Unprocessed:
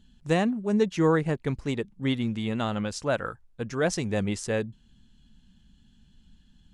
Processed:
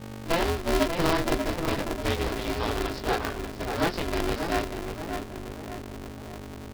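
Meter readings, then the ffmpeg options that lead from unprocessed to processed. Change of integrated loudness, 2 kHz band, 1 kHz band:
-1.0 dB, +2.5 dB, +5.0 dB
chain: -filter_complex "[0:a]equalizer=f=62:w=2.6:g=-11.5,aresample=11025,acrusher=bits=2:mode=log:mix=0:aa=0.000001,aresample=44100,aeval=exprs='val(0)+0.0112*(sin(2*PI*50*n/s)+sin(2*PI*2*50*n/s)/2+sin(2*PI*3*50*n/s)/3+sin(2*PI*4*50*n/s)/4+sin(2*PI*5*50*n/s)/5)':c=same,asplit=2[s0][s1];[s1]adelay=20,volume=0.631[s2];[s0][s2]amix=inputs=2:normalize=0,asplit=2[s3][s4];[s4]adelay=588,lowpass=f=2000:p=1,volume=0.501,asplit=2[s5][s6];[s6]adelay=588,lowpass=f=2000:p=1,volume=0.51,asplit=2[s7][s8];[s8]adelay=588,lowpass=f=2000:p=1,volume=0.51,asplit=2[s9][s10];[s10]adelay=588,lowpass=f=2000:p=1,volume=0.51,asplit=2[s11][s12];[s12]adelay=588,lowpass=f=2000:p=1,volume=0.51,asplit=2[s13][s14];[s14]adelay=588,lowpass=f=2000:p=1,volume=0.51[s15];[s3][s5][s7][s9][s11][s13][s15]amix=inputs=7:normalize=0,aeval=exprs='val(0)*sgn(sin(2*PI*170*n/s))':c=same,volume=0.708"

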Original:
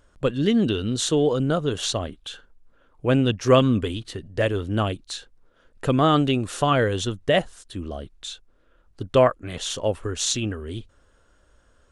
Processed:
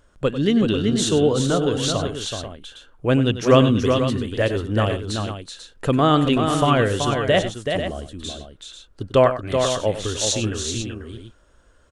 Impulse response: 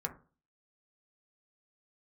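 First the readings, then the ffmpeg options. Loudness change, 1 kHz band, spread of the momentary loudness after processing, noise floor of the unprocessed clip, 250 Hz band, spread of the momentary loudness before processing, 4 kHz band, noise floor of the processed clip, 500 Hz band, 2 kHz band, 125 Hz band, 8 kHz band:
+2.5 dB, +3.0 dB, 16 LU, -61 dBFS, +3.0 dB, 17 LU, +3.0 dB, -55 dBFS, +3.0 dB, +3.0 dB, +3.0 dB, +3.0 dB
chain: -af "aecho=1:1:96|379|491:0.237|0.501|0.316,volume=1.19"

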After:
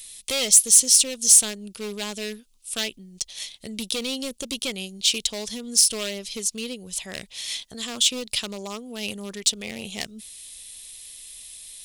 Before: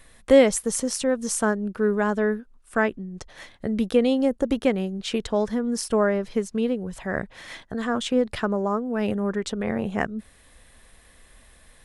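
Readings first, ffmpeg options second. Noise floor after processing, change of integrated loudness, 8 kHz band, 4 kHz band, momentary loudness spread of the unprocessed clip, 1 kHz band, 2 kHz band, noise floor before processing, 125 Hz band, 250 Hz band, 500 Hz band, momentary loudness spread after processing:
-58 dBFS, +3.5 dB, +15.0 dB, +12.0 dB, 10 LU, -12.0 dB, -4.0 dB, -55 dBFS, under -10 dB, -11.5 dB, -12.5 dB, 24 LU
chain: -af "asoftclip=type=hard:threshold=0.133,aexciter=amount=7.2:drive=9.9:freq=2500,volume=0.316"

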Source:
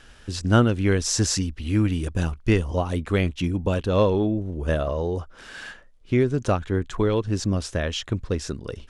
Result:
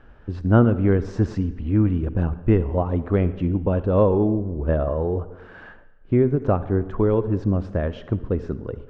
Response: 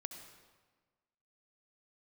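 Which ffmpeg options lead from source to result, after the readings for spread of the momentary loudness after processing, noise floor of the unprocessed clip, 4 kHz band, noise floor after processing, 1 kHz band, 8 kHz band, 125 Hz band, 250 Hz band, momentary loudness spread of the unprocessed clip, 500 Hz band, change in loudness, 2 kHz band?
9 LU, -49 dBFS, under -15 dB, -47 dBFS, +0.5 dB, under -25 dB, +2.5 dB, +2.5 dB, 9 LU, +2.5 dB, +2.0 dB, -6.0 dB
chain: -filter_complex "[0:a]lowpass=1100,asplit=2[s0][s1];[1:a]atrim=start_sample=2205,asetrate=57330,aresample=44100[s2];[s1][s2]afir=irnorm=-1:irlink=0,volume=1.19[s3];[s0][s3]amix=inputs=2:normalize=0,volume=0.841"

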